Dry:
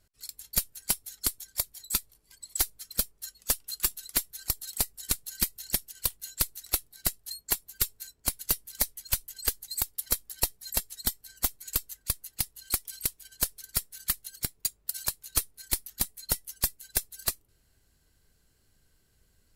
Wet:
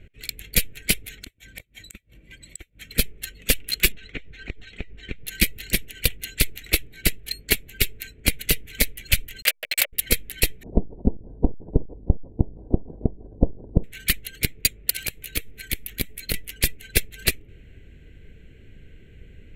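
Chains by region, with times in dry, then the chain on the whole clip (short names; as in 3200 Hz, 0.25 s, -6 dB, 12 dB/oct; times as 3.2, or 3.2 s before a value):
1.19–2.91 notch comb 420 Hz + flipped gate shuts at -28 dBFS, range -27 dB
3.92–5.27 compressor 20:1, threshold -38 dBFS + air absorption 160 m
9.42–9.93 level-crossing sampler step -30.5 dBFS + elliptic high-pass 560 Hz
10.63–13.84 half-waves squared off + rippled Chebyshev low-pass 1000 Hz, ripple 3 dB
15.02–16.34 high shelf 9900 Hz +8 dB + compressor 8:1, threshold -33 dBFS
whole clip: Wiener smoothing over 9 samples; EQ curve 470 Hz 0 dB, 1000 Hz -23 dB, 2300 Hz +6 dB, 5700 Hz -12 dB; maximiser +24.5 dB; gain -2 dB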